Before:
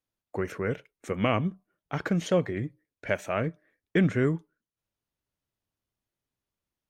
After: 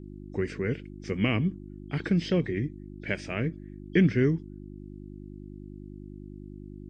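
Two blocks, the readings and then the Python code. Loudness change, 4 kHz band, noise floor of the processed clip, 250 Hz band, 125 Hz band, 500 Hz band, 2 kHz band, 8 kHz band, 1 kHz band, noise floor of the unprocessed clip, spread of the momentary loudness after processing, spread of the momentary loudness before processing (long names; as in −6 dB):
+0.5 dB, +1.5 dB, −43 dBFS, +2.0 dB, +2.0 dB, −2.0 dB, 0.0 dB, can't be measured, −8.5 dB, below −85 dBFS, 20 LU, 12 LU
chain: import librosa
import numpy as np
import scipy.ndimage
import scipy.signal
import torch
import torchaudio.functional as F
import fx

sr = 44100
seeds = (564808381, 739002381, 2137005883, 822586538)

y = fx.freq_compress(x, sr, knee_hz=3100.0, ratio=1.5)
y = fx.dmg_buzz(y, sr, base_hz=50.0, harmonics=7, level_db=-45.0, tilt_db=-1, odd_only=False)
y = fx.band_shelf(y, sr, hz=860.0, db=-11.0, octaves=1.7)
y = y * librosa.db_to_amplitude(2.0)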